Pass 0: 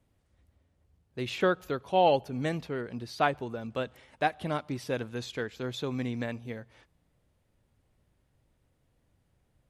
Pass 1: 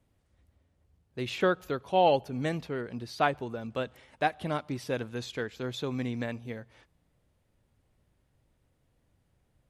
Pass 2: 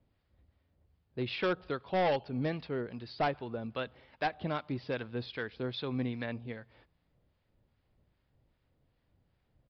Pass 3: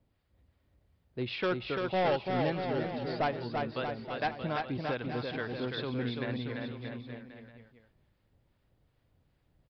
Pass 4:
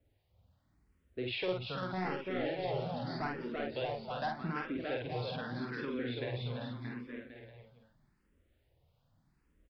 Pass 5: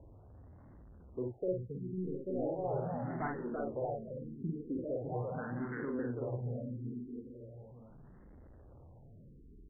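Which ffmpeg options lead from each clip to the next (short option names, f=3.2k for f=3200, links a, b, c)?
-af anull
-filter_complex "[0:a]acrossover=split=900[a][b];[a]aeval=exprs='val(0)*(1-0.5/2+0.5/2*cos(2*PI*2.5*n/s))':c=same[c];[b]aeval=exprs='val(0)*(1-0.5/2-0.5/2*cos(2*PI*2.5*n/s))':c=same[d];[c][d]amix=inputs=2:normalize=0,aresample=11025,asoftclip=type=hard:threshold=-25dB,aresample=44100"
-af "aecho=1:1:340|629|874.6|1083|1261:0.631|0.398|0.251|0.158|0.1"
-filter_complex "[0:a]acompressor=threshold=-33dB:ratio=2,asplit=2[a][b];[b]adelay=49,volume=-3dB[c];[a][c]amix=inputs=2:normalize=0,asplit=2[d][e];[e]afreqshift=0.82[f];[d][f]amix=inputs=2:normalize=1"
-af "aeval=exprs='val(0)+0.5*0.00335*sgn(val(0))':c=same,adynamicsmooth=sensitivity=5.5:basefreq=870,afftfilt=real='re*lt(b*sr/1024,460*pow(2200/460,0.5+0.5*sin(2*PI*0.39*pts/sr)))':imag='im*lt(b*sr/1024,460*pow(2200/460,0.5+0.5*sin(2*PI*0.39*pts/sr)))':win_size=1024:overlap=0.75"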